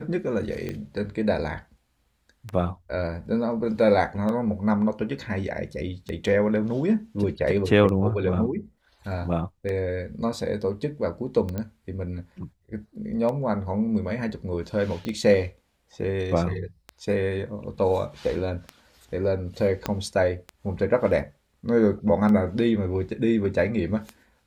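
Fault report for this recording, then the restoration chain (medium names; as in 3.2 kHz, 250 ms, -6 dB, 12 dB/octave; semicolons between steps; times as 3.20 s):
tick 33 1/3 rpm -19 dBFS
11.58 s: pop -17 dBFS
15.05 s: pop -19 dBFS
19.86 s: pop -11 dBFS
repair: de-click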